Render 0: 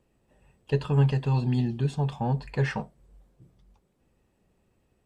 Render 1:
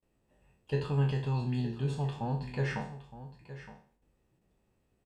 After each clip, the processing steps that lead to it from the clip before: spectral sustain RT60 0.46 s; gate with hold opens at -59 dBFS; delay 916 ms -14 dB; trim -7 dB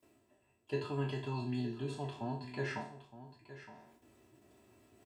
high-pass 96 Hz 24 dB/octave; comb 3 ms, depth 84%; reverse; upward compressor, threshold -46 dBFS; reverse; trim -4.5 dB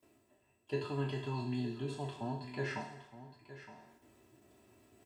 on a send at -15 dB: tilt EQ +4 dB/octave + reverberation RT60 1.5 s, pre-delay 62 ms

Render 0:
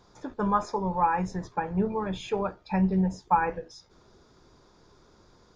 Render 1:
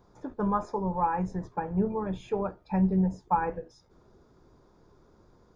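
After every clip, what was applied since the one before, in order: peaking EQ 4.3 kHz -12 dB 2.9 oct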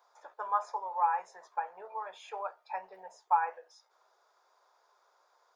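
inverse Chebyshev high-pass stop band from 260 Hz, stop band 50 dB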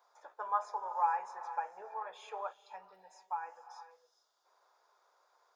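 gated-style reverb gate 490 ms rising, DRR 11 dB; time-frequency box 2.52–4.45 s, 330–2700 Hz -9 dB; trim -2.5 dB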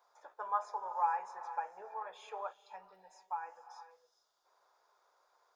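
bass shelf 180 Hz +5.5 dB; trim -1.5 dB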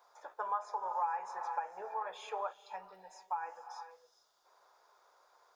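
compression 3:1, threshold -39 dBFS, peak gain reduction 10 dB; trim +5.5 dB

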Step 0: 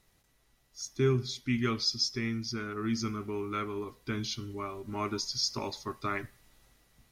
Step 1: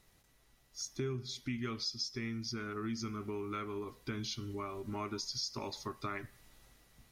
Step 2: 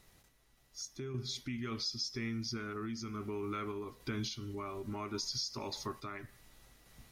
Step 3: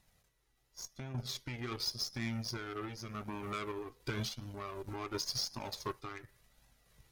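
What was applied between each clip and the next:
compression 3:1, threshold -39 dBFS, peak gain reduction 13 dB; trim +1 dB
in parallel at +2 dB: peak limiter -35.5 dBFS, peak gain reduction 10 dB; on the sum: random-step tremolo; trim -2.5 dB
Chebyshev shaper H 2 -16 dB, 7 -21 dB, 8 -25 dB, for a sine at -26 dBFS; flange 0.9 Hz, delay 1.1 ms, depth 1.5 ms, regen -30%; trim +5 dB

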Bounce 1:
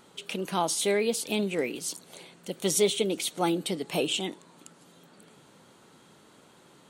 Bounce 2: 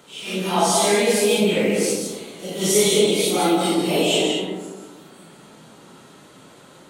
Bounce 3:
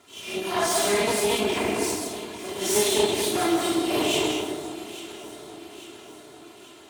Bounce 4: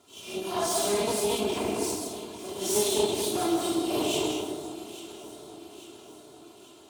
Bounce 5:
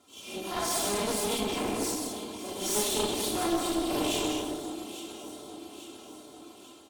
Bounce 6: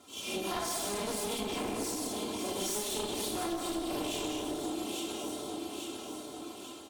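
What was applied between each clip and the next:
phase randomisation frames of 200 ms; de-hum 50.28 Hz, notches 38; on a send at -2 dB: reverberation RT60 1.3 s, pre-delay 105 ms; on the sum: trim +8 dB
comb filter that takes the minimum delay 2.9 ms; high-pass 79 Hz 24 dB/octave; echo whose repeats swap between lows and highs 422 ms, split 1.2 kHz, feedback 73%, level -12 dB; trim -3.5 dB
peaking EQ 1.9 kHz -11 dB 0.79 oct; trim -3 dB
comb 3.8 ms, depth 45%; level rider gain up to 3.5 dB; one-sided clip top -31.5 dBFS; trim -2.5 dB
compression, threshold -37 dBFS, peak gain reduction 13.5 dB; trim +5 dB

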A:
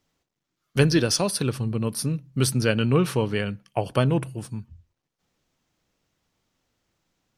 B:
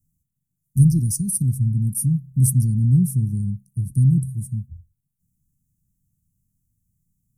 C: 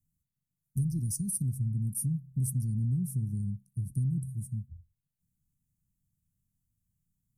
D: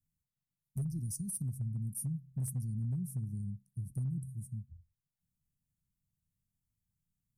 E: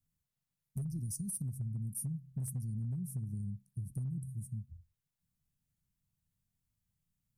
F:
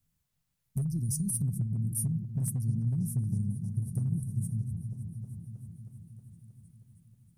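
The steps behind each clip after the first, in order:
inverse Chebyshev band-stop 530–3400 Hz, stop band 60 dB; trim +8.5 dB
compression, threshold -18 dBFS, peak gain reduction 9 dB; trim -8.5 dB
hard clipper -24 dBFS, distortion -29 dB; trim -6 dB
compression, threshold -36 dBFS, peak gain reduction 4.5 dB; trim +1.5 dB
delay with an opening low-pass 316 ms, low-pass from 200 Hz, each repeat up 1 oct, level -6 dB; trim +7 dB

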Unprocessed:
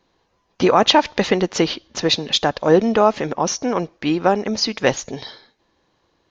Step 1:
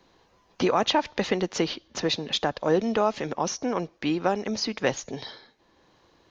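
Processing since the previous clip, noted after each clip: three bands compressed up and down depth 40%; trim -8 dB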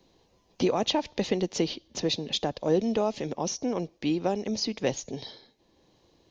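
peaking EQ 1.4 kHz -13 dB 1.3 oct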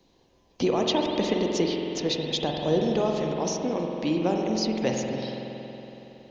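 spring tank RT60 3.6 s, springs 46 ms, chirp 80 ms, DRR 0.5 dB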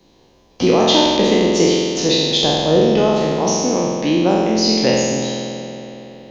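spectral sustain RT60 1.69 s; trim +7 dB

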